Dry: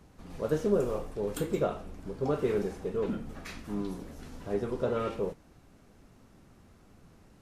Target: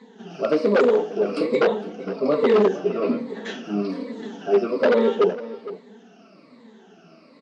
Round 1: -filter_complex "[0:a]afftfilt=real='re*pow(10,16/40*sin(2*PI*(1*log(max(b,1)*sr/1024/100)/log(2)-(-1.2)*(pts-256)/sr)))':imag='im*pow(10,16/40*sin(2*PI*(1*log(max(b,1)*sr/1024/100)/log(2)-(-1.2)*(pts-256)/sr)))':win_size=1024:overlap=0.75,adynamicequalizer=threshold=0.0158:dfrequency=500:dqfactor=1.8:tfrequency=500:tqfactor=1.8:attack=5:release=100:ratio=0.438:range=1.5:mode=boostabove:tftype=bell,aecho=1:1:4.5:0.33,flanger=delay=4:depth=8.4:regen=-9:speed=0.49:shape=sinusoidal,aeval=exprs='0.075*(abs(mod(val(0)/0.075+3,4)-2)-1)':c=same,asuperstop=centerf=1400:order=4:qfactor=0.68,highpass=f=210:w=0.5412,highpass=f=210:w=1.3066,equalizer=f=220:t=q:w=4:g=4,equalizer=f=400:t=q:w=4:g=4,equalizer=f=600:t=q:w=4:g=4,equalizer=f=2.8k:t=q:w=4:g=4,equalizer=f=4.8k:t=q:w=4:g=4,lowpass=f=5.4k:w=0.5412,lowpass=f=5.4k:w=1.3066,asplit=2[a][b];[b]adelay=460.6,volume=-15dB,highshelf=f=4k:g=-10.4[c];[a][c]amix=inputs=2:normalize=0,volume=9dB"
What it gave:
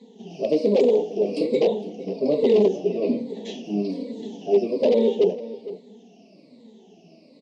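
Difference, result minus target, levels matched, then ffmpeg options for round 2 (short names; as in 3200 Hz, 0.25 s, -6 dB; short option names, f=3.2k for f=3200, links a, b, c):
1000 Hz band -8.0 dB
-filter_complex "[0:a]afftfilt=real='re*pow(10,16/40*sin(2*PI*(1*log(max(b,1)*sr/1024/100)/log(2)-(-1.2)*(pts-256)/sr)))':imag='im*pow(10,16/40*sin(2*PI*(1*log(max(b,1)*sr/1024/100)/log(2)-(-1.2)*(pts-256)/sr)))':win_size=1024:overlap=0.75,adynamicequalizer=threshold=0.0158:dfrequency=500:dqfactor=1.8:tfrequency=500:tqfactor=1.8:attack=5:release=100:ratio=0.438:range=1.5:mode=boostabove:tftype=bell,aecho=1:1:4.5:0.33,flanger=delay=4:depth=8.4:regen=-9:speed=0.49:shape=sinusoidal,aeval=exprs='0.075*(abs(mod(val(0)/0.075+3,4)-2)-1)':c=same,highpass=f=210:w=0.5412,highpass=f=210:w=1.3066,equalizer=f=220:t=q:w=4:g=4,equalizer=f=400:t=q:w=4:g=4,equalizer=f=600:t=q:w=4:g=4,equalizer=f=2.8k:t=q:w=4:g=4,equalizer=f=4.8k:t=q:w=4:g=4,lowpass=f=5.4k:w=0.5412,lowpass=f=5.4k:w=1.3066,asplit=2[a][b];[b]adelay=460.6,volume=-15dB,highshelf=f=4k:g=-10.4[c];[a][c]amix=inputs=2:normalize=0,volume=9dB"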